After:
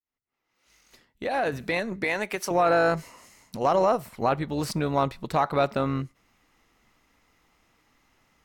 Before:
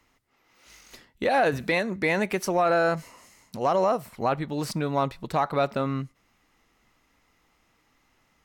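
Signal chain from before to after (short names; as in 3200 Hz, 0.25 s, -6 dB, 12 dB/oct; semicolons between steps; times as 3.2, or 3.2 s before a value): opening faded in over 2.64 s; 2.04–2.51 HPF 550 Hz 6 dB/oct; AM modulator 220 Hz, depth 20%; gain +2.5 dB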